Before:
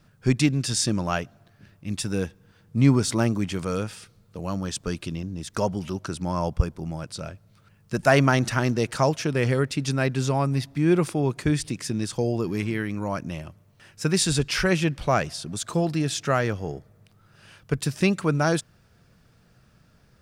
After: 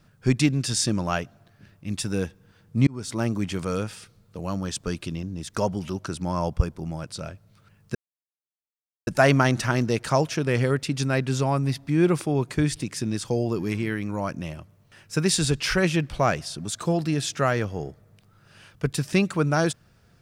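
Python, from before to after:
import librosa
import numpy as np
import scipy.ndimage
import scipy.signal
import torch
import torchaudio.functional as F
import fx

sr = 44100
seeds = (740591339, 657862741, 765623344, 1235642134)

y = fx.edit(x, sr, fx.fade_in_span(start_s=2.87, length_s=0.75, curve='qsin'),
    fx.insert_silence(at_s=7.95, length_s=1.12), tone=tone)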